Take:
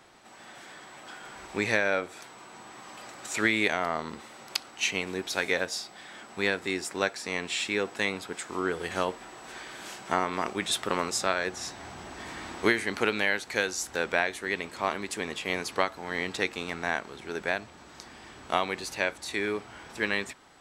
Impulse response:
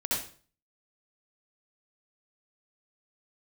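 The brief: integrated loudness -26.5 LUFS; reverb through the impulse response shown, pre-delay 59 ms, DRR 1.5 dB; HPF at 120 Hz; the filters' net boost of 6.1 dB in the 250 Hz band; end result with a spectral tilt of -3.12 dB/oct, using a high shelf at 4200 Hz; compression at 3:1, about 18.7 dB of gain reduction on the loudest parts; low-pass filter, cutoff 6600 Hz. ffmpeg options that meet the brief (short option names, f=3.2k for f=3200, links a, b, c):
-filter_complex "[0:a]highpass=120,lowpass=6.6k,equalizer=f=250:t=o:g=8.5,highshelf=f=4.2k:g=4.5,acompressor=threshold=-41dB:ratio=3,asplit=2[a][b];[1:a]atrim=start_sample=2205,adelay=59[c];[b][c]afir=irnorm=-1:irlink=0,volume=-9dB[d];[a][d]amix=inputs=2:normalize=0,volume=13dB"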